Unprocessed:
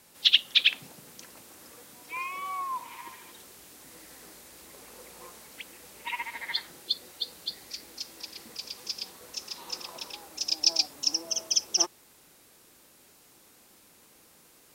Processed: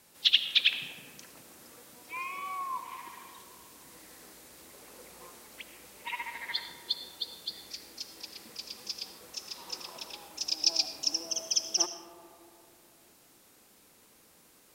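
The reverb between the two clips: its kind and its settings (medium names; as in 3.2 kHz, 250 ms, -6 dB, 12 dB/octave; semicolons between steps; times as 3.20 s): algorithmic reverb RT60 2.9 s, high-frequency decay 0.25×, pre-delay 40 ms, DRR 8 dB; trim -3 dB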